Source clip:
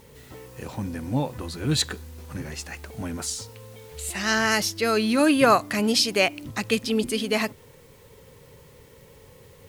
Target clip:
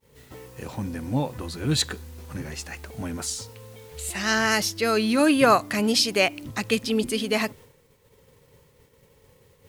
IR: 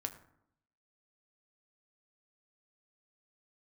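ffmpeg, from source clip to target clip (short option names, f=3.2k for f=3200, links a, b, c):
-af "agate=range=-33dB:threshold=-43dB:ratio=3:detection=peak"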